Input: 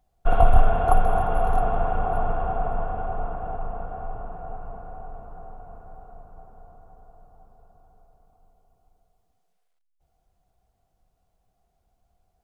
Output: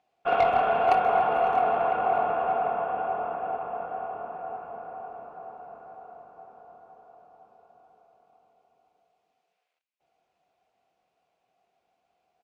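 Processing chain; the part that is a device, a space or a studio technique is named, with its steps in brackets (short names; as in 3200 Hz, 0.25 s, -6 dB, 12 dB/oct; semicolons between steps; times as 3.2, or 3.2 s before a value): intercom (BPF 340–4700 Hz; bell 2500 Hz +8 dB 0.45 oct; soft clip -16.5 dBFS, distortion -15 dB; doubler 25 ms -12 dB); gain +2.5 dB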